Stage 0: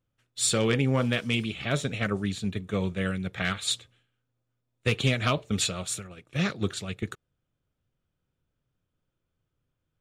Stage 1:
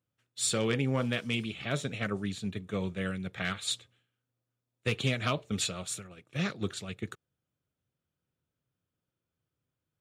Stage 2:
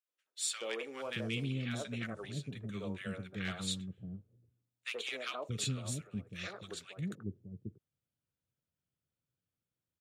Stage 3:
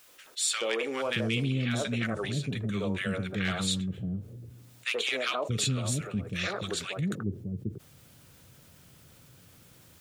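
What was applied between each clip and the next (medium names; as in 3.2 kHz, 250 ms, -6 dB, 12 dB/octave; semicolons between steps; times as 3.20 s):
high-pass 85 Hz; trim -4.5 dB
three bands offset in time highs, mids, lows 80/630 ms, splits 370/1200 Hz; trim -5.5 dB
level flattener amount 50%; trim +6 dB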